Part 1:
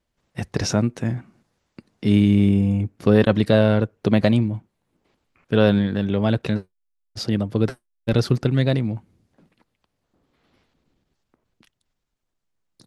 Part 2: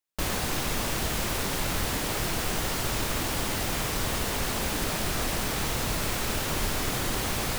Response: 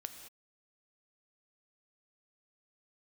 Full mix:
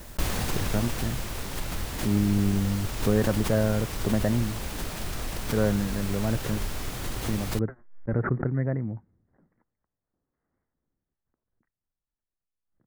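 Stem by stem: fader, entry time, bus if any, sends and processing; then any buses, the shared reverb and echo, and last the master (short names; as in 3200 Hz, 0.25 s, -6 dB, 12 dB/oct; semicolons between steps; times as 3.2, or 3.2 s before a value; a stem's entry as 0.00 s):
9.5 s -9 dB -> 10.12 s -17.5 dB, 0.00 s, no send, steep low-pass 2000 Hz 72 dB/oct; low shelf 150 Hz -3.5 dB
-1.0 dB, 0.00 s, no send, auto duck -7 dB, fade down 1.30 s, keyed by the first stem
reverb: off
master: low shelf 110 Hz +9 dB; backwards sustainer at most 95 dB/s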